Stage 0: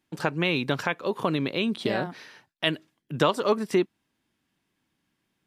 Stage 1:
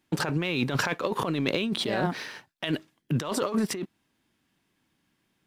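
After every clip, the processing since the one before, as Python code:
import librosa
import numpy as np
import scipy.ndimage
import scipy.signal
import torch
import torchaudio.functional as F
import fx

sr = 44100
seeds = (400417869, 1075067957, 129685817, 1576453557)

y = fx.over_compress(x, sr, threshold_db=-31.0, ratio=-1.0)
y = fx.leveller(y, sr, passes=1)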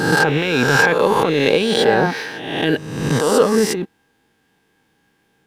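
y = fx.spec_swells(x, sr, rise_s=1.06)
y = fx.small_body(y, sr, hz=(460.0, 810.0, 1600.0), ring_ms=50, db=13)
y = y * librosa.db_to_amplitude(5.5)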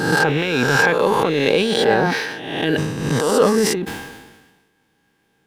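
y = fx.sustainer(x, sr, db_per_s=46.0)
y = y * librosa.db_to_amplitude(-2.0)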